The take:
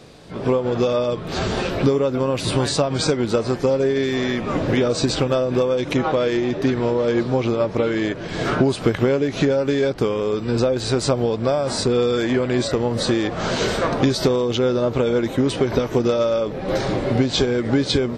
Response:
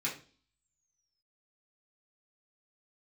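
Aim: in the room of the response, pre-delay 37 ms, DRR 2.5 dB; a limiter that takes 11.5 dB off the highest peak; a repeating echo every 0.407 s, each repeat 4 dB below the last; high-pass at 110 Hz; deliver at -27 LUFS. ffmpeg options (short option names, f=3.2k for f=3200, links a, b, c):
-filter_complex "[0:a]highpass=110,alimiter=limit=-15.5dB:level=0:latency=1,aecho=1:1:407|814|1221|1628|2035|2442|2849|3256|3663:0.631|0.398|0.25|0.158|0.0994|0.0626|0.0394|0.0249|0.0157,asplit=2[a][b];[1:a]atrim=start_sample=2205,adelay=37[c];[b][c]afir=irnorm=-1:irlink=0,volume=-7dB[d];[a][d]amix=inputs=2:normalize=0,volume=-6.5dB"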